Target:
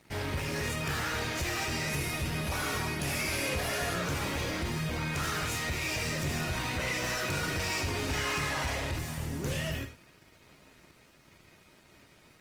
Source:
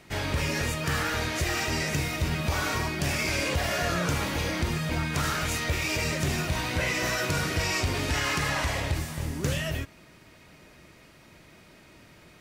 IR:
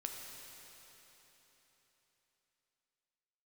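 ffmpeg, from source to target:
-filter_complex "[0:a]asoftclip=type=tanh:threshold=-27.5dB,asettb=1/sr,asplit=3[link_01][link_02][link_03];[link_01]atrim=end=1.884[link_04];[link_02]atrim=start=1.88:end=3.96,asetpts=PTS-STARTPTS,afade=type=in:duration=0.004:curve=qsin,afade=type=out:start_time=2.076:duration=0.004:curve=qsin,equalizer=frequency=10000:width=8:gain=13[link_05];[link_03]atrim=start=3.956[link_06];[link_04][link_05]acrossfade=duration=0.004:curve1=hsin:curve2=qsin[link_07];[link_07][link_06]acrossfade=duration=0.004:curve1=qsin:curve2=hsin[link_08];[1:a]atrim=start_sample=2205,afade=type=out:start_time=0.16:duration=0.01,atrim=end_sample=7497[link_09];[link_08][link_09]afir=irnorm=-1:irlink=0,aeval=exprs='sgn(val(0))*max(abs(val(0))-0.00112,0)':channel_layout=same,volume=2.5dB" -ar 48000 -c:a libopus -b:a 24k

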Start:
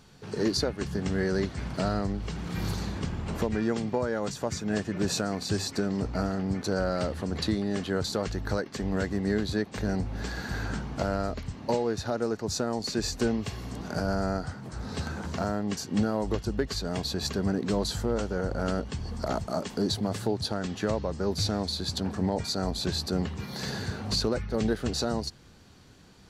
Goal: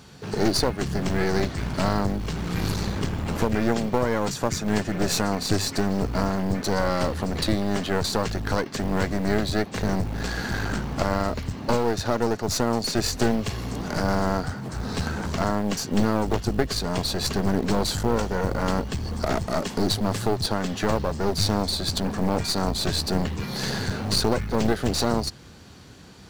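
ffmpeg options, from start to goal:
ffmpeg -i in.wav -af "acrusher=bits=8:mode=log:mix=0:aa=0.000001,highpass=45,aeval=exprs='clip(val(0),-1,0.0141)':channel_layout=same,volume=8dB" out.wav

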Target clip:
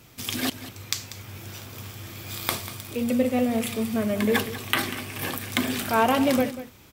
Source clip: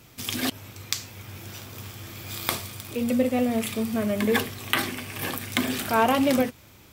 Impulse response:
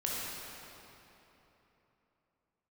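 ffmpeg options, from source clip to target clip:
-af "aecho=1:1:191:0.2"

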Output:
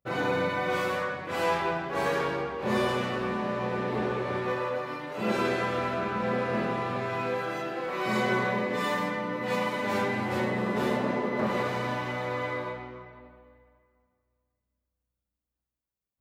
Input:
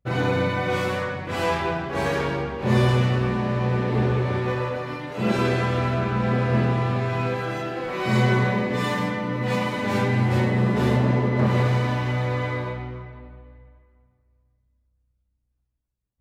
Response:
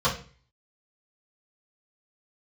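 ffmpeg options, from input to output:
-filter_complex "[0:a]lowpass=frequency=1100:poles=1,aemphasis=mode=production:type=riaa,asplit=2[link_01][link_02];[1:a]atrim=start_sample=2205[link_03];[link_02][link_03]afir=irnorm=-1:irlink=0,volume=-28.5dB[link_04];[link_01][link_04]amix=inputs=2:normalize=0"

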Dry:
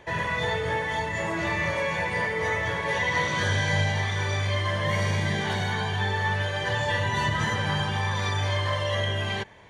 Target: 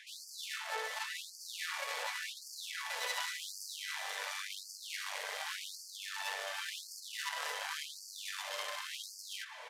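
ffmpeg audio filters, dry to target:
ffmpeg -i in.wav -af "lowshelf=frequency=140:gain=-8.5,areverse,acompressor=mode=upward:threshold=-42dB:ratio=2.5,areverse,aeval=exprs='max(val(0),0)':channel_layout=same,flanger=delay=7.7:depth=1:regen=-28:speed=0.64:shape=triangular,aeval=exprs='(tanh(141*val(0)+0.75)-tanh(0.75))/141':channel_layout=same,aresample=32000,aresample=44100,afftfilt=real='re*gte(b*sr/1024,390*pow(4500/390,0.5+0.5*sin(2*PI*0.9*pts/sr)))':imag='im*gte(b*sr/1024,390*pow(4500/390,0.5+0.5*sin(2*PI*0.9*pts/sr)))':win_size=1024:overlap=0.75,volume=16.5dB" out.wav

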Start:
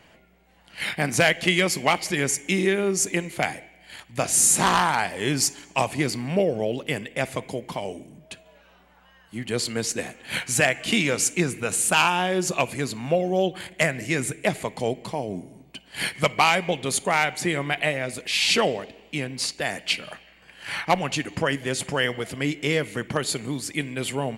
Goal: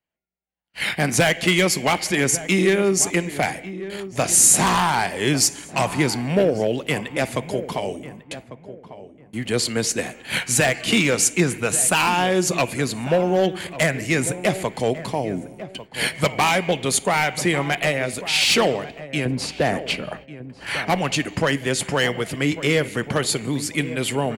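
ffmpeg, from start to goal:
ffmpeg -i in.wav -filter_complex "[0:a]agate=range=-39dB:threshold=-46dB:ratio=16:detection=peak,asettb=1/sr,asplit=3[link_01][link_02][link_03];[link_01]atrim=end=19.254[link_04];[link_02]atrim=start=19.25:end=20.67,asetpts=PTS-STARTPTS,afade=type=in:duration=0.004:curve=qsin,afade=type=out:start_time=1.416:duration=0.004:curve=qsin,tiltshelf=frequency=1400:gain=8[link_05];[link_03]atrim=start=20.666[link_06];[link_04][link_05]acrossfade=duration=0.004:curve1=hsin:curve2=qsin[link_07];[link_07][link_06]acrossfade=duration=0.004:curve1=qsin:curve2=hsin,acrossover=split=330|6200[link_08][link_09][link_10];[link_09]asoftclip=type=hard:threshold=-19dB[link_11];[link_08][link_11][link_10]amix=inputs=3:normalize=0,asplit=2[link_12][link_13];[link_13]adelay=1147,lowpass=frequency=1200:poles=1,volume=-13dB,asplit=2[link_14][link_15];[link_15]adelay=1147,lowpass=frequency=1200:poles=1,volume=0.27,asplit=2[link_16][link_17];[link_17]adelay=1147,lowpass=frequency=1200:poles=1,volume=0.27[link_18];[link_12][link_14][link_16][link_18]amix=inputs=4:normalize=0,volume=4.5dB" out.wav

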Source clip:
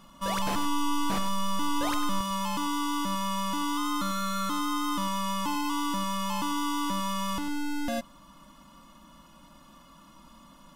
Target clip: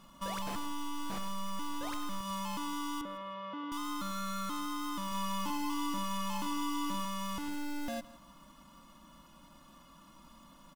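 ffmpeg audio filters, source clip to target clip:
ffmpeg -i in.wav -filter_complex "[0:a]acompressor=threshold=-30dB:ratio=6,acrusher=bits=4:mode=log:mix=0:aa=0.000001,asettb=1/sr,asplit=3[link_01][link_02][link_03];[link_01]atrim=end=3.014[link_04];[link_02]atrim=start=3.01:end=3.72,asetpts=PTS-STARTPTS,afade=type=in:duration=0.004:curve=qsin,afade=type=out:start_time=0.706:duration=0.004:curve=qsin,highpass=160,equalizer=frequency=190:width_type=q:width=4:gain=-9,equalizer=frequency=510:width_type=q:width=4:gain=10,equalizer=frequency=930:width_type=q:width=4:gain=-6,equalizer=frequency=1600:width_type=q:width=4:gain=-3,equalizer=frequency=2500:width_type=q:width=4:gain=-6,lowpass=frequency=2800:width=0.5412,lowpass=frequency=2800:width=1.3066[link_05];[link_03]atrim=start=3.716[link_06];[link_04][link_05]acrossfade=duration=0.004:curve1=hsin:curve2=qsin[link_07];[link_07][link_06]acrossfade=duration=0.004:curve1=qsin:curve2=hsin,asettb=1/sr,asplit=3[link_08][link_09][link_10];[link_08]atrim=end=5.074[link_11];[link_09]atrim=start=5.07:end=7.05,asetpts=PTS-STARTPTS,afade=type=in:duration=0.004:curve=qsin,afade=type=out:start_time=1.976:duration=0.004:curve=qsin,asplit=2[link_12][link_13];[link_13]adelay=45,volume=-5dB[link_14];[link_12][link_14]amix=inputs=2:normalize=0,atrim=end_sample=87318[link_15];[link_10]atrim=start=7.046[link_16];[link_11][link_15]acrossfade=duration=0.004:curve1=hsin:curve2=qsin[link_17];[link_17][link_16]acrossfade=duration=0.004:curve1=qsin:curve2=hsin,aecho=1:1:164|328:0.112|0.0303,volume=-4dB" out.wav

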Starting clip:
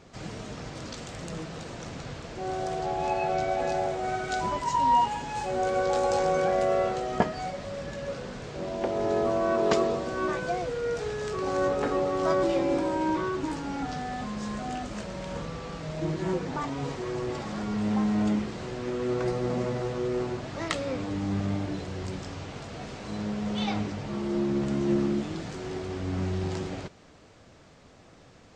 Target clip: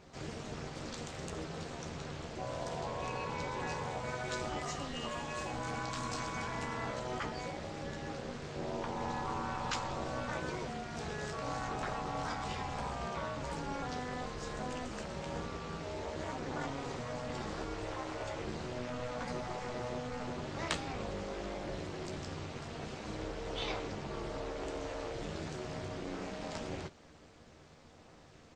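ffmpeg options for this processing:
ffmpeg -i in.wav -filter_complex "[0:a]asplit=2[link_01][link_02];[link_02]adelay=13,volume=-6dB[link_03];[link_01][link_03]amix=inputs=2:normalize=0,tremolo=f=250:d=0.788,afftfilt=real='re*lt(hypot(re,im),0.112)':imag='im*lt(hypot(re,im),0.112)':win_size=1024:overlap=0.75,volume=-1.5dB" out.wav

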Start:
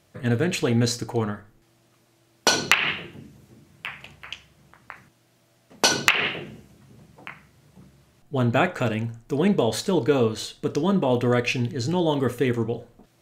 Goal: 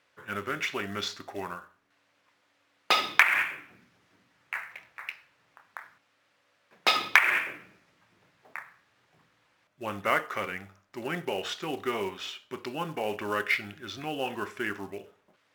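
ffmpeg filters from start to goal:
ffmpeg -i in.wav -af "bandpass=frequency=2000:width_type=q:width=0.89:csg=0,acrusher=bits=5:mode=log:mix=0:aa=0.000001,asetrate=37485,aresample=44100" out.wav

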